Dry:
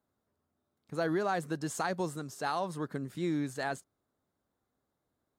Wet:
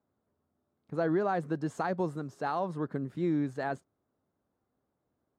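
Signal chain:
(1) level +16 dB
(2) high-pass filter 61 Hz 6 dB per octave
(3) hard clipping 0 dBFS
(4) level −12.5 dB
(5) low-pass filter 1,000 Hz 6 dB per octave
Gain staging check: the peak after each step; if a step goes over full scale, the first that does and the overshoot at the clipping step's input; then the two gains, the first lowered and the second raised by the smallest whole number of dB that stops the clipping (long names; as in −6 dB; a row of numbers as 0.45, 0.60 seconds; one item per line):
−4.0, −3.5, −3.5, −16.0, −18.5 dBFS
no step passes full scale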